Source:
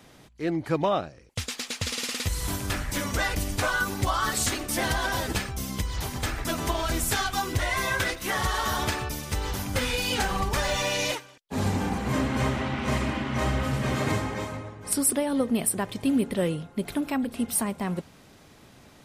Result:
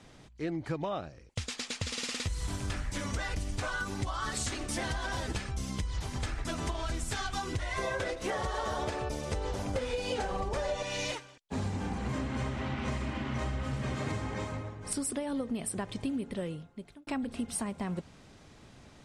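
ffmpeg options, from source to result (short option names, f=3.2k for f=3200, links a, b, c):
-filter_complex "[0:a]asettb=1/sr,asplit=3[a][b][c];[a]atrim=end=7.784[d];[b]atrim=start=7.78:end=10.83,asetpts=PTS-STARTPTS,afade=t=in:d=0.004:c=qsin,afade=t=out:st=3.046:d=0.004:c=qsin,equalizer=f=530:t=o:w=1.3:g=13.5[e];[c]atrim=start=10.826[f];[d][e]acrossfade=d=0.004:c1=hsin:c2=qsin[g];[g][f]acrossfade=d=0.004:c1=qsin:c2=hsin,asplit=2[h][i];[h]atrim=end=17.07,asetpts=PTS-STARTPTS,afade=t=out:st=15.94:d=1.13[j];[i]atrim=start=17.07,asetpts=PTS-STARTPTS,afade=t=in:d=0.004:c=hsin[k];[j][k]concat=n=2:v=0:a=1,lowpass=f=9.2k:w=0.5412,lowpass=f=9.2k:w=1.3066,lowshelf=f=98:g=7.5,acompressor=threshold=-27dB:ratio=6,volume=-3.5dB"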